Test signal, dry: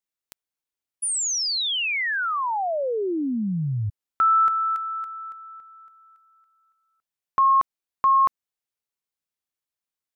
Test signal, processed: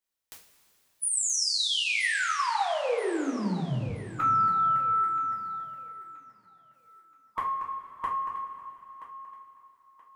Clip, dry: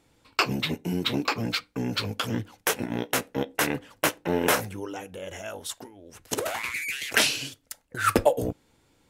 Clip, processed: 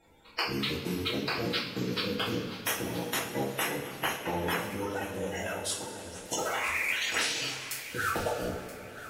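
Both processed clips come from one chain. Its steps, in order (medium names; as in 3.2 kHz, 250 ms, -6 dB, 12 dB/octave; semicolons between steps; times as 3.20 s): coarse spectral quantiser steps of 30 dB; compression, threshold -31 dBFS; on a send: thinning echo 977 ms, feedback 31%, high-pass 200 Hz, level -15 dB; on the sum: two-slope reverb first 0.35 s, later 3.2 s, from -16 dB, DRR -6 dB; trim -2.5 dB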